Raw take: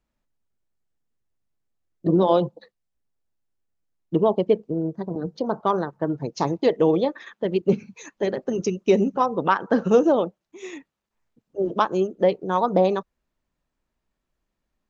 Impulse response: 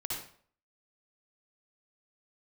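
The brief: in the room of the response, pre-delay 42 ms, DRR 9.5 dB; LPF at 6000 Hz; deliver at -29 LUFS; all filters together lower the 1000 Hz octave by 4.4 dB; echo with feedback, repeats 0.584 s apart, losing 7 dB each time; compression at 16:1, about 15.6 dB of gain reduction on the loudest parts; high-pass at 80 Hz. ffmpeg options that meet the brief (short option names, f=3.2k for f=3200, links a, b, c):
-filter_complex "[0:a]highpass=80,lowpass=6k,equalizer=f=1k:t=o:g=-5.5,acompressor=threshold=-29dB:ratio=16,aecho=1:1:584|1168|1752|2336|2920:0.447|0.201|0.0905|0.0407|0.0183,asplit=2[a][b];[1:a]atrim=start_sample=2205,adelay=42[c];[b][c]afir=irnorm=-1:irlink=0,volume=-12dB[d];[a][d]amix=inputs=2:normalize=0,volume=6dB"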